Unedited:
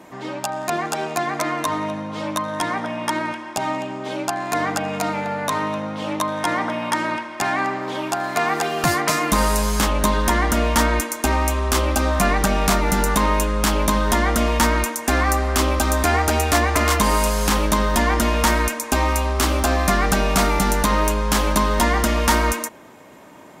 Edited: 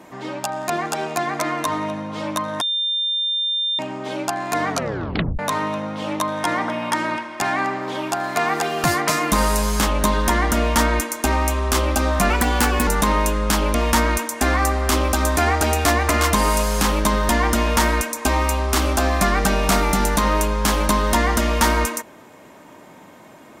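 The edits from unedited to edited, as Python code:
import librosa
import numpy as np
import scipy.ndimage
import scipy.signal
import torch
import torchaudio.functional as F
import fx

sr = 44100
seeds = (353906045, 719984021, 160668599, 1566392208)

y = fx.edit(x, sr, fx.bleep(start_s=2.61, length_s=1.18, hz=3600.0, db=-19.0),
    fx.tape_stop(start_s=4.69, length_s=0.7),
    fx.speed_span(start_s=12.3, length_s=0.71, speed=1.24),
    fx.cut(start_s=13.88, length_s=0.53), tone=tone)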